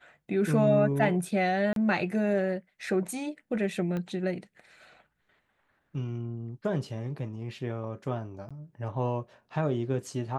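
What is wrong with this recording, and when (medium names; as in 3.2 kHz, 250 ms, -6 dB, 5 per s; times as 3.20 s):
1.73–1.76 s: dropout 32 ms
3.97 s: pop -23 dBFS
8.49–8.51 s: dropout 16 ms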